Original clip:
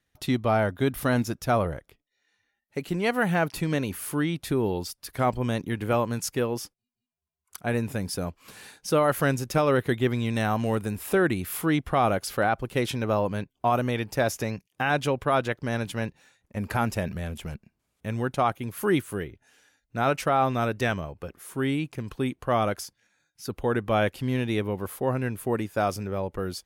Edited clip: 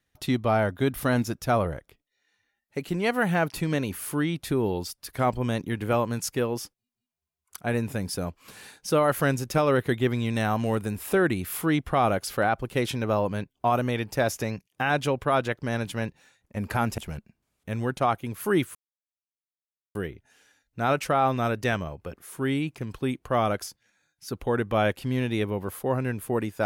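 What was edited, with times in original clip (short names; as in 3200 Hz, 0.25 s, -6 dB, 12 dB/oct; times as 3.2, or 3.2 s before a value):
16.98–17.35 cut
19.12 insert silence 1.20 s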